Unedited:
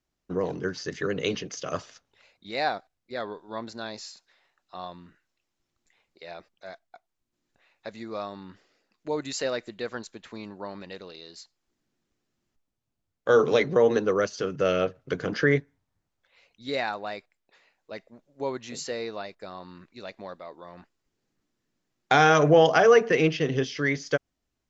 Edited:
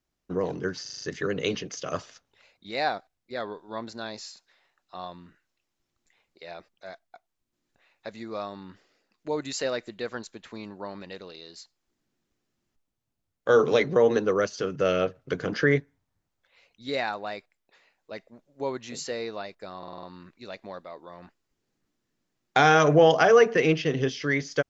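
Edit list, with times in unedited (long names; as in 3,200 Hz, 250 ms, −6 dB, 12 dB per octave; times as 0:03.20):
0:00.82: stutter 0.04 s, 6 plays
0:19.58: stutter 0.05 s, 6 plays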